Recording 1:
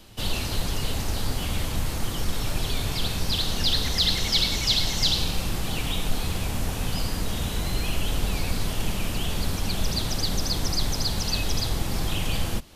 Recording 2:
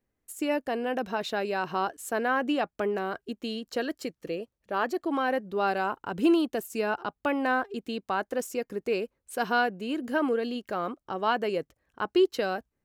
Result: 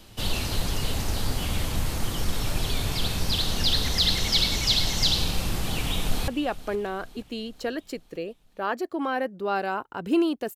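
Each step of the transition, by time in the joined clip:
recording 1
0:05.78–0:06.28: delay throw 470 ms, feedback 55%, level −16.5 dB
0:06.28: continue with recording 2 from 0:02.40

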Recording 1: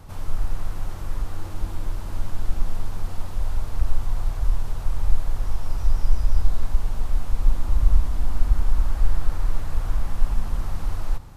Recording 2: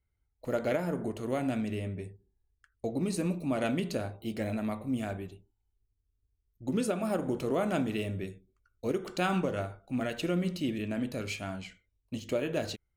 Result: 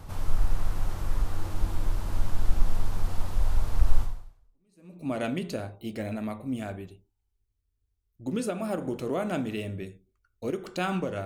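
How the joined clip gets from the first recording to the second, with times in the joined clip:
recording 1
0:04.54: continue with recording 2 from 0:02.95, crossfade 1.06 s exponential

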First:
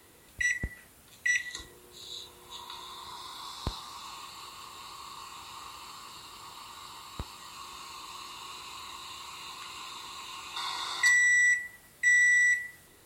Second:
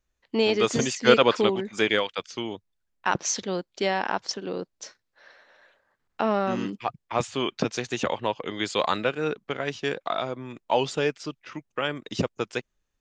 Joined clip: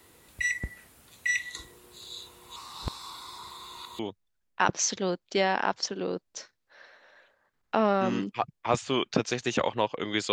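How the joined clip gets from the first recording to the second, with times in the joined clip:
first
0:02.56–0:03.99: reverse
0:03.99: continue with second from 0:02.45

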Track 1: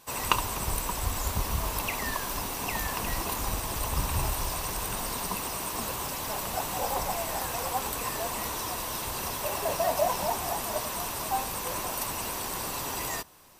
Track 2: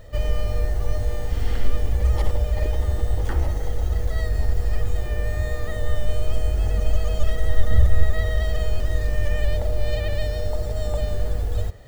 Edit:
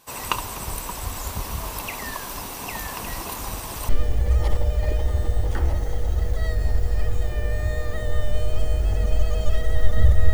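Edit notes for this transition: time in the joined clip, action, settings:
track 1
0:03.89: continue with track 2 from 0:01.63

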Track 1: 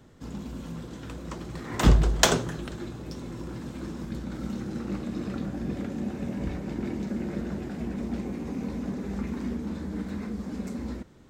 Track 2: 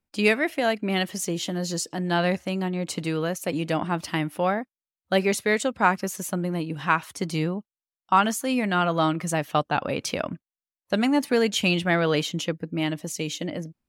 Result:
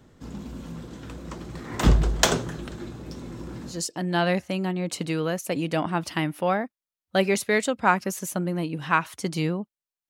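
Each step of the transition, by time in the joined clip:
track 1
0:03.74: continue with track 2 from 0:01.71, crossfade 0.20 s

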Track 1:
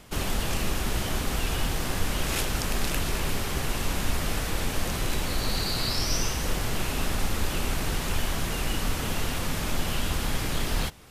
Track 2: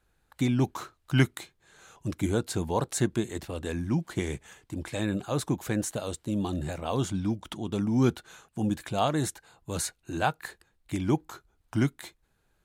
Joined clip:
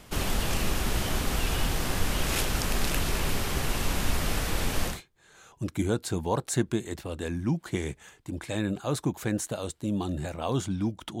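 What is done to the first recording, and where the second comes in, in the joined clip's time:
track 1
0:04.93: continue with track 2 from 0:01.37, crossfade 0.16 s

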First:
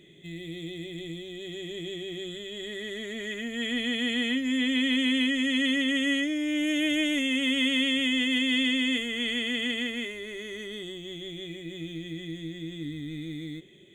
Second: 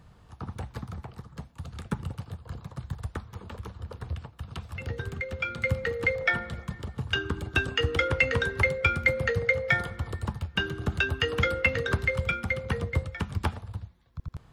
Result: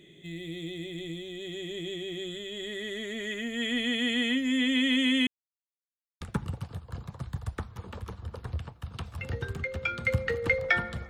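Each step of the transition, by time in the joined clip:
first
0:05.27–0:06.21: silence
0:06.21: continue with second from 0:01.78

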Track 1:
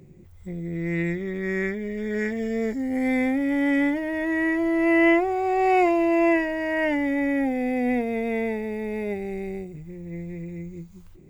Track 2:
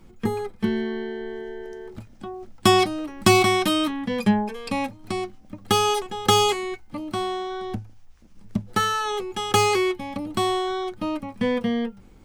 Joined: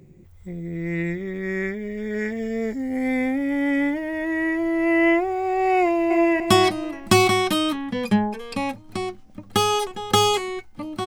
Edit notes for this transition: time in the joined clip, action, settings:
track 1
0:05.80–0:06.40: delay throw 300 ms, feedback 30%, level −7 dB
0:06.40: continue with track 2 from 0:02.55

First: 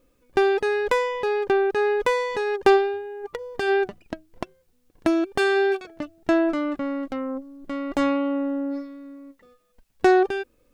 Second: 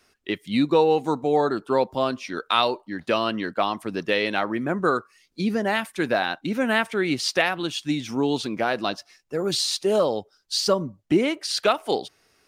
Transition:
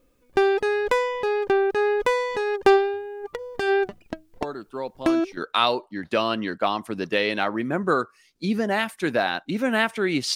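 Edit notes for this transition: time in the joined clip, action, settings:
first
0:04.41: mix in second from 0:01.37 0.96 s −10 dB
0:05.37: continue with second from 0:02.33

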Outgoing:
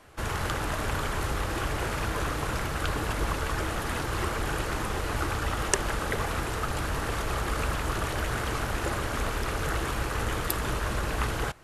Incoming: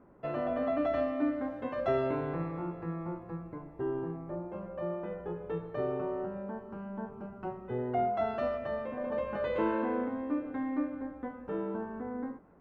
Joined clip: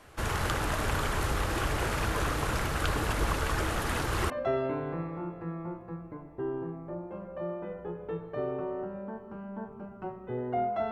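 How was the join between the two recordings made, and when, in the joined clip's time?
outgoing
0:04.30: continue with incoming from 0:01.71

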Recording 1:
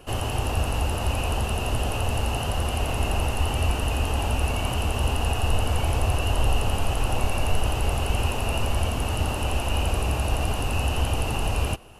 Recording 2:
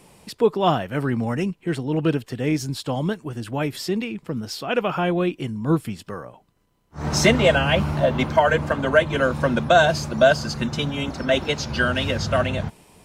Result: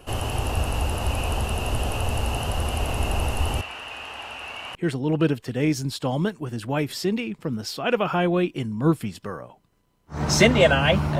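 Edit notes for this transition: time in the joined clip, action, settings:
recording 1
0:03.61–0:04.75: resonant band-pass 2,000 Hz, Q 1.1
0:04.75: continue with recording 2 from 0:01.59

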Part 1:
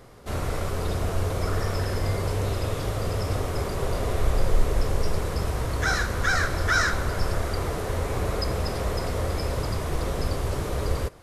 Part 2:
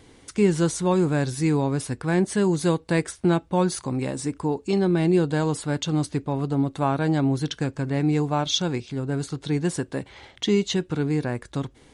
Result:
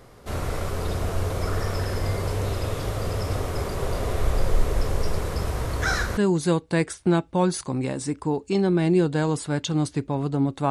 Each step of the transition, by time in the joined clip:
part 1
0:06.17: continue with part 2 from 0:02.35

